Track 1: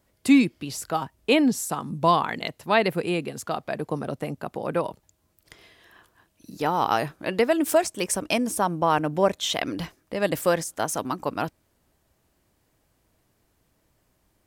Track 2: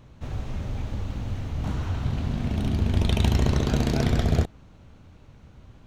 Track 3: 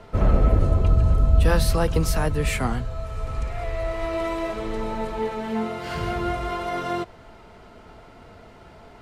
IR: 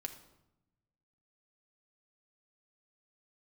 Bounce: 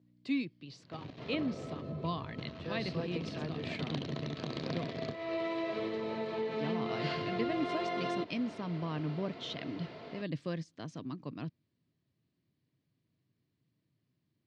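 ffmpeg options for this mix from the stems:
-filter_complex "[0:a]asubboost=boost=9:cutoff=180,volume=-14.5dB[link_01];[1:a]aeval=exprs='0.473*(cos(1*acos(clip(val(0)/0.473,-1,1)))-cos(1*PI/2))+0.0944*(cos(3*acos(clip(val(0)/0.473,-1,1)))-cos(3*PI/2))+0.0596*(cos(6*acos(clip(val(0)/0.473,-1,1)))-cos(6*PI/2))':channel_layout=same,adelay=700,volume=-0.5dB,asplit=3[link_02][link_03][link_04];[link_02]atrim=end=1.81,asetpts=PTS-STARTPTS,afade=type=out:start_time=1.806:duration=0.004:curve=hsin[link_05];[link_03]atrim=start=1.81:end=2.38,asetpts=PTS-STARTPTS,volume=0[link_06];[link_04]atrim=start=2.38,asetpts=PTS-STARTPTS,afade=type=in:duration=0.004:curve=hsin[link_07];[link_05][link_06][link_07]concat=n=3:v=0:a=1[link_08];[2:a]acompressor=threshold=-31dB:ratio=5,adelay=1200,volume=2.5dB[link_09];[link_08][link_09]amix=inputs=2:normalize=0,aeval=exprs='val(0)+0.00158*(sin(2*PI*60*n/s)+sin(2*PI*2*60*n/s)/2+sin(2*PI*3*60*n/s)/3+sin(2*PI*4*60*n/s)/4+sin(2*PI*5*60*n/s)/5)':channel_layout=same,acompressor=threshold=-28dB:ratio=6,volume=0dB[link_10];[link_01][link_10]amix=inputs=2:normalize=0,highpass=frequency=140:width=0.5412,highpass=frequency=140:width=1.3066,equalizer=frequency=200:width_type=q:width=4:gain=-6,equalizer=frequency=840:width_type=q:width=4:gain=-9,equalizer=frequency=1400:width_type=q:width=4:gain=-8,equalizer=frequency=4300:width_type=q:width=4:gain=4,lowpass=frequency=4600:width=0.5412,lowpass=frequency=4600:width=1.3066"

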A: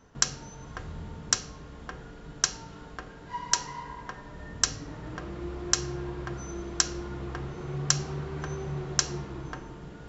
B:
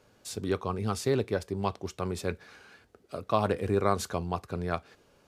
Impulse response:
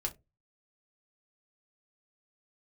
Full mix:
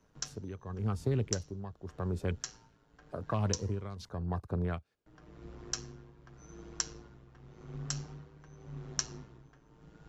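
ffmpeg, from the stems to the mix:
-filter_complex "[0:a]equalizer=frequency=5800:width_type=o:width=0.41:gain=2.5,tremolo=f=110:d=0.75,flanger=delay=6.3:depth=1.6:regen=56:speed=0.6:shape=sinusoidal,volume=-4.5dB,asplit=3[link_01][link_02][link_03];[link_01]atrim=end=4.09,asetpts=PTS-STARTPTS,afade=type=out:start_time=4.086:duration=0.004:curve=hsin[link_04];[link_02]atrim=start=4.09:end=5.06,asetpts=PTS-STARTPTS,volume=0[link_05];[link_03]atrim=start=5.06,asetpts=PTS-STARTPTS,afade=type=in:duration=0.004:curve=hsin[link_06];[link_04][link_05][link_06]concat=n=3:v=0:a=1[link_07];[1:a]afwtdn=0.00891,volume=1.5dB[link_08];[link_07][link_08]amix=inputs=2:normalize=0,lowshelf=frequency=120:gain=4.5,acrossover=split=190|3000[link_09][link_10][link_11];[link_10]acompressor=threshold=-34dB:ratio=6[link_12];[link_09][link_12][link_11]amix=inputs=3:normalize=0,tremolo=f=0.89:d=0.73"

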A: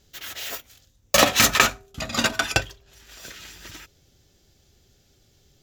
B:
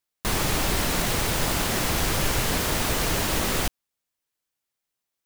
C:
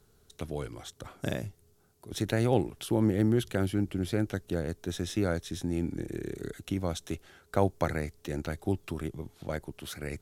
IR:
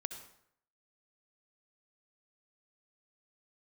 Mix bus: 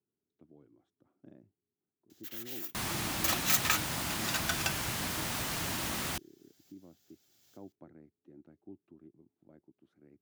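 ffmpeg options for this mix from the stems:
-filter_complex "[0:a]aemphasis=mode=production:type=riaa,highshelf=frequency=3500:gain=-11,adelay=2100,volume=-3dB[link_01];[1:a]adelay=2500,volume=-9dB[link_02];[2:a]bandpass=frequency=320:width_type=q:width=2.3:csg=0,volume=-13.5dB,asplit=2[link_03][link_04];[link_04]apad=whole_len=340558[link_05];[link_01][link_05]sidechaincompress=threshold=-52dB:ratio=6:attack=8.4:release=753[link_06];[link_06][link_02][link_03]amix=inputs=3:normalize=0,highpass=88,equalizer=frequency=460:width=2:gain=-8.5"

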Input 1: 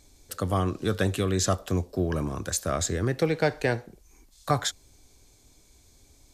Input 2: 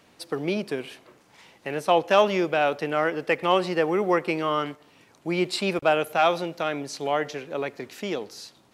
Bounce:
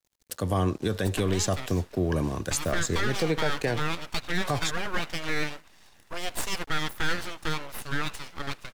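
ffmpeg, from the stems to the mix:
ffmpeg -i stem1.wav -i stem2.wav -filter_complex "[0:a]bandreject=frequency=1300:width=5.9,aeval=exprs='sgn(val(0))*max(abs(val(0))-0.00335,0)':channel_layout=same,volume=2.5dB[link_01];[1:a]highpass=380,aecho=1:1:1.1:0.87,aeval=exprs='abs(val(0))':channel_layout=same,adelay=850,volume=0.5dB[link_02];[link_01][link_02]amix=inputs=2:normalize=0,alimiter=limit=-16dB:level=0:latency=1:release=86" out.wav

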